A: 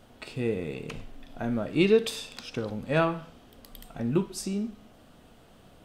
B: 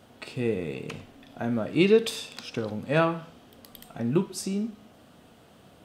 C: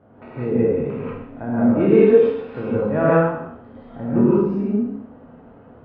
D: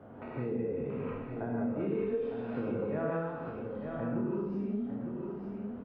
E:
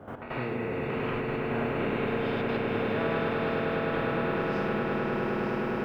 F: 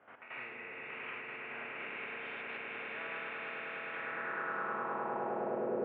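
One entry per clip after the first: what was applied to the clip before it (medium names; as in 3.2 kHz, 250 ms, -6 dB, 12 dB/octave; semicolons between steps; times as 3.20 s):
high-pass 82 Hz 12 dB/octave; trim +1.5 dB
spectral sustain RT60 0.75 s; Bessel low-pass 1.1 kHz, order 4; gated-style reverb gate 210 ms rising, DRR -8 dB
compression 3:1, threshold -25 dBFS, peak gain reduction 13 dB; delay 905 ms -8 dB; three bands compressed up and down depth 40%; trim -8 dB
trance gate ".x..xxxxxxxxxxxx" 199 bpm -12 dB; echo with a slow build-up 103 ms, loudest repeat 8, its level -8 dB; spectrum-flattening compressor 2:1
band-pass sweep 2.4 kHz -> 520 Hz, 3.90–5.79 s; distance through air 410 m; trim +3 dB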